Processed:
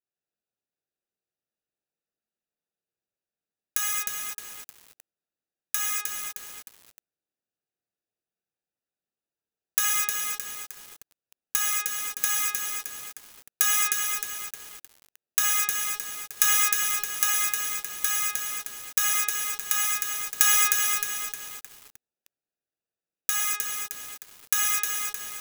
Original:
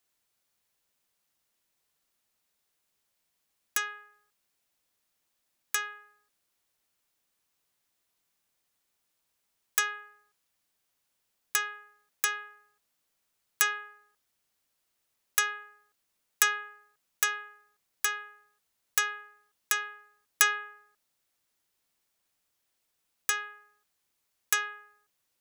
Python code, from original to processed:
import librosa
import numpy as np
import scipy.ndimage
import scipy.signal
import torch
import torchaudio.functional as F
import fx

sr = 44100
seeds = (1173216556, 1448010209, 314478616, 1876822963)

y = fx.wiener(x, sr, points=41)
y = fx.tilt_eq(y, sr, slope=3.0)
y = fx.rev_gated(y, sr, seeds[0], gate_ms=270, shape='flat', drr_db=-5.5)
y = fx.echo_crushed(y, sr, ms=309, feedback_pct=55, bits=5, wet_db=-3.5)
y = F.gain(torch.from_numpy(y), -7.0).numpy()